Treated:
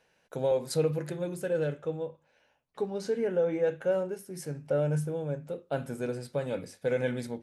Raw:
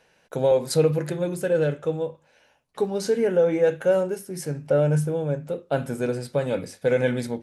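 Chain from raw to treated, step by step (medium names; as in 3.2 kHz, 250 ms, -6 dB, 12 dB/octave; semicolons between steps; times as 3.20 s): 1.82–4.19 s: treble shelf 6.5 kHz -9 dB; trim -7.5 dB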